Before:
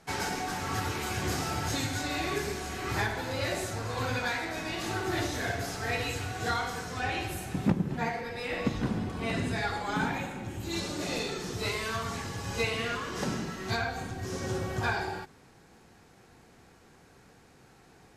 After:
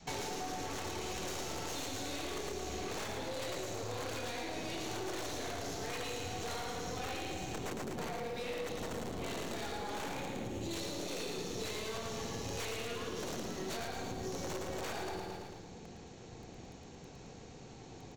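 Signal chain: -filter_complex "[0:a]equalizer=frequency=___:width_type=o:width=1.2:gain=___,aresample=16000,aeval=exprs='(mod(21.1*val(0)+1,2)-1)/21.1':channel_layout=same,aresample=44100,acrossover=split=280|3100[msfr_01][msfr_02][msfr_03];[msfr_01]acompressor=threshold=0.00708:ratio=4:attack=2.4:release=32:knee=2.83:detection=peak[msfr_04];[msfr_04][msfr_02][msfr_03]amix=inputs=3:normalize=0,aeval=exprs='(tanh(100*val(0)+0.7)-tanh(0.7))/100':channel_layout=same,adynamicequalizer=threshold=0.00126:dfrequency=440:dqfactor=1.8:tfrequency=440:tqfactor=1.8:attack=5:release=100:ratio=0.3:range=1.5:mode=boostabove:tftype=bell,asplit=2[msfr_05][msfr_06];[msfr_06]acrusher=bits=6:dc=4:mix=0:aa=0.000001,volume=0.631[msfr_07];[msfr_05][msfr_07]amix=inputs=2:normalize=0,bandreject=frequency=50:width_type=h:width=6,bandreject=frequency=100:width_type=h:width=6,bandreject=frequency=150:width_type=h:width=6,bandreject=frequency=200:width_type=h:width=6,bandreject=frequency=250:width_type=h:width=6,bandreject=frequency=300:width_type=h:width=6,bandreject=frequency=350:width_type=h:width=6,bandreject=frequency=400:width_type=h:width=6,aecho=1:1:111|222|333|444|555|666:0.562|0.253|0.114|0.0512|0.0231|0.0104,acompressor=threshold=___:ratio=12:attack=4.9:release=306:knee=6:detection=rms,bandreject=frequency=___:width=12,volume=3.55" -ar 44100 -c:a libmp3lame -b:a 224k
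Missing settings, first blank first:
1.5k, -12, 0.00562, 5k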